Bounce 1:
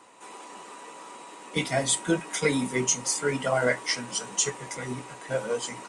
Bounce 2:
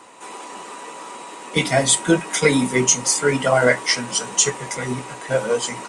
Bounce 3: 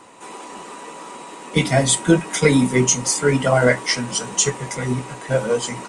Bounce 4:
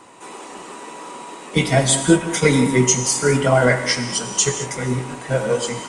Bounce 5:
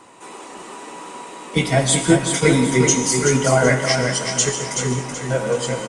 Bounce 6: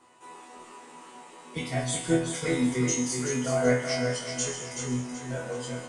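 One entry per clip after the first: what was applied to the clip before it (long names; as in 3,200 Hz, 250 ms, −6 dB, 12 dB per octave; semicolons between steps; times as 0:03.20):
hum removal 99.1 Hz, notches 3; level +8.5 dB
low-shelf EQ 250 Hz +9.5 dB; level −1.5 dB
reverb whose tail is shaped and stops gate 240 ms flat, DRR 7 dB
repeating echo 378 ms, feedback 36%, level −6 dB; level −1 dB
resonators tuned to a chord E2 fifth, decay 0.38 s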